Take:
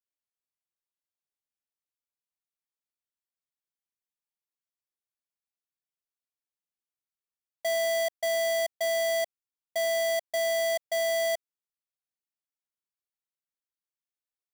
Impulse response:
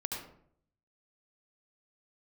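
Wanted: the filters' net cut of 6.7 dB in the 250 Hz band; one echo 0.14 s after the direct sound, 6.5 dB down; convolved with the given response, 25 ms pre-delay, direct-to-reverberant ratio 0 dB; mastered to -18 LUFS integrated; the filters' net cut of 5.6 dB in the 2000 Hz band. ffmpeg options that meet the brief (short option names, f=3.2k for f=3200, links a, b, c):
-filter_complex "[0:a]equalizer=f=250:t=o:g=-7.5,equalizer=f=2k:t=o:g=-5.5,aecho=1:1:140:0.473,asplit=2[a][b];[1:a]atrim=start_sample=2205,adelay=25[c];[b][c]afir=irnorm=-1:irlink=0,volume=-2dB[d];[a][d]amix=inputs=2:normalize=0,volume=12.5dB"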